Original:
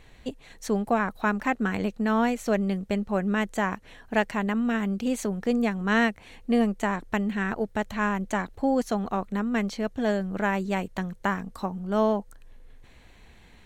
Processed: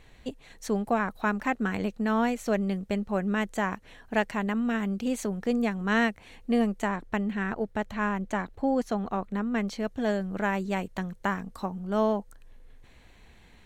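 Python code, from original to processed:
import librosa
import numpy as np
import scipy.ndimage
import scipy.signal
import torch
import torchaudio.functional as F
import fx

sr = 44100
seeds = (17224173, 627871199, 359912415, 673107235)

y = fx.high_shelf(x, sr, hz=4600.0, db=-7.0, at=(6.88, 9.68))
y = F.gain(torch.from_numpy(y), -2.0).numpy()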